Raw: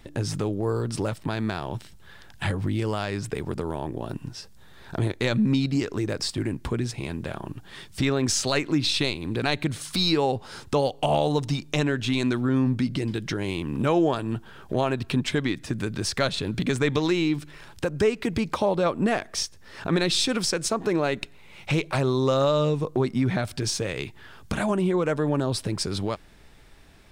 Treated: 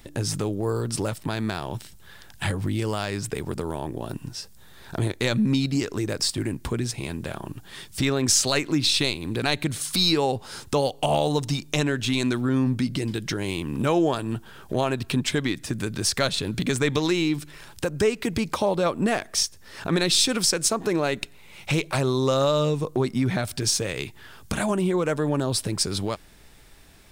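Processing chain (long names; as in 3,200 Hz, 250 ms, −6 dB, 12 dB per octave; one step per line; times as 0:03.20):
high-shelf EQ 6,100 Hz +11 dB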